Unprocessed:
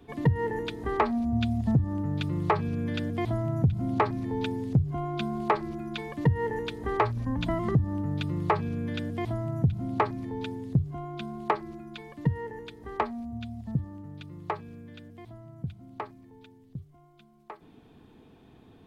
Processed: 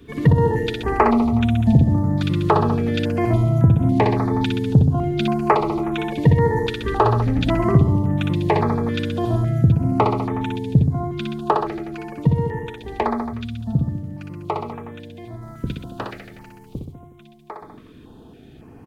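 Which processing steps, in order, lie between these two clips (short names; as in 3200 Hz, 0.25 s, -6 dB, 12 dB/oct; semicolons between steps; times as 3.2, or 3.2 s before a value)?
15.41–16.78 spectral limiter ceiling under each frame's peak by 18 dB; on a send: reverse bouncing-ball echo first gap 60 ms, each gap 1.1×, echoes 5; on the sum: stepped notch 3.6 Hz 790–4600 Hz; gain +8.5 dB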